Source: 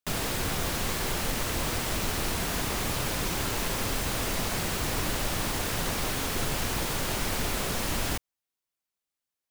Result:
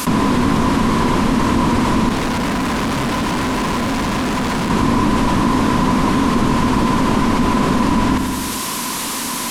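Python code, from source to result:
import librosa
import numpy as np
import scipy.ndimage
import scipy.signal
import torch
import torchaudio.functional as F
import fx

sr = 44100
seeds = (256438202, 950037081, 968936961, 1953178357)

y = fx.delta_mod(x, sr, bps=64000, step_db=-45.5)
y = fx.small_body(y, sr, hz=(240.0, 1000.0), ring_ms=35, db=16)
y = fx.tube_stage(y, sr, drive_db=36.0, bias=0.7, at=(2.09, 4.7))
y = fx.echo_feedback(y, sr, ms=86, feedback_pct=54, wet_db=-14.5)
y = fx.env_flatten(y, sr, amount_pct=70)
y = y * librosa.db_to_amplitude(6.5)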